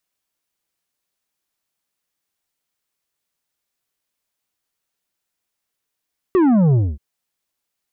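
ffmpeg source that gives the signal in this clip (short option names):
-f lavfi -i "aevalsrc='0.251*clip((0.63-t)/0.24,0,1)*tanh(2.51*sin(2*PI*390*0.63/log(65/390)*(exp(log(65/390)*t/0.63)-1)))/tanh(2.51)':d=0.63:s=44100"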